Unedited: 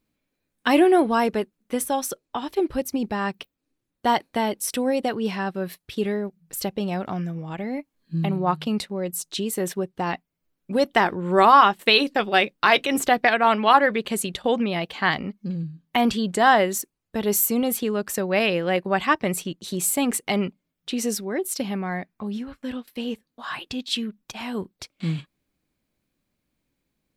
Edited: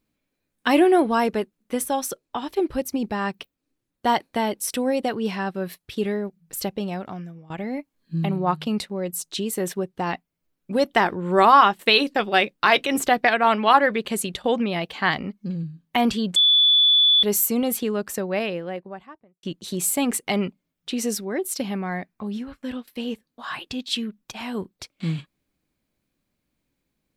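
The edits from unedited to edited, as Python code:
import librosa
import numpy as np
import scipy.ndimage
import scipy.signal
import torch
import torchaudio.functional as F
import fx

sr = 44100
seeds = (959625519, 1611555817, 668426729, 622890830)

y = fx.studio_fade_out(x, sr, start_s=17.79, length_s=1.64)
y = fx.edit(y, sr, fx.fade_out_to(start_s=6.68, length_s=0.82, floor_db=-16.0),
    fx.bleep(start_s=16.36, length_s=0.87, hz=3460.0, db=-13.0), tone=tone)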